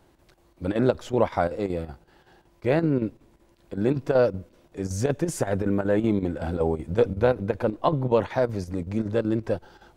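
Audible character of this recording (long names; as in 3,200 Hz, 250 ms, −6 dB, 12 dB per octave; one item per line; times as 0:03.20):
chopped level 5.3 Hz, depth 60%, duty 80%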